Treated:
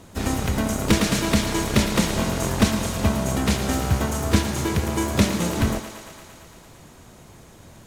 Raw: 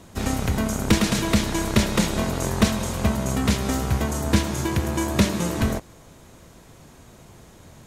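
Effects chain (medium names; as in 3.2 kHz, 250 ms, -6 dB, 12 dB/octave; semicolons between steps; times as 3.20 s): harmony voices +4 st -14 dB, +5 st -13 dB; thinning echo 114 ms, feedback 78%, high-pass 270 Hz, level -10.5 dB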